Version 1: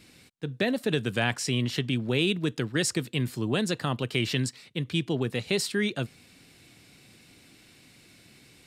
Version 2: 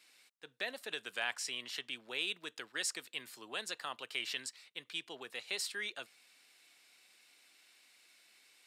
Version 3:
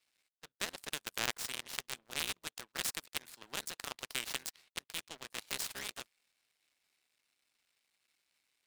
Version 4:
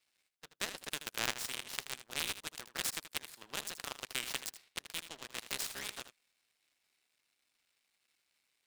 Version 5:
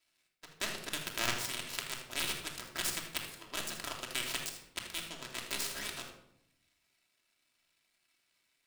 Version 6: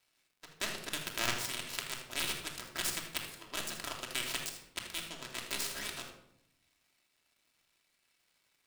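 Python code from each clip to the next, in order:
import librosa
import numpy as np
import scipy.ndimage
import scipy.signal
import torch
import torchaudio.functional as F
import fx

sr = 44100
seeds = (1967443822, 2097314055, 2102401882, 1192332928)

y1 = scipy.signal.sosfilt(scipy.signal.butter(2, 830.0, 'highpass', fs=sr, output='sos'), x)
y1 = F.gain(torch.from_numpy(y1), -7.5).numpy()
y2 = fx.cycle_switch(y1, sr, every=3, mode='muted')
y2 = fx.power_curve(y2, sr, exponent=2.0)
y2 = fx.spectral_comp(y2, sr, ratio=2.0)
y2 = F.gain(torch.from_numpy(y2), 8.0).numpy()
y3 = y2 + 10.0 ** (-12.0 / 20.0) * np.pad(y2, (int(79 * sr / 1000.0), 0))[:len(y2)]
y4 = fx.room_shoebox(y3, sr, seeds[0], volume_m3=1900.0, walls='furnished', distance_m=2.9)
y5 = fx.dmg_crackle(y4, sr, seeds[1], per_s=210.0, level_db=-61.0)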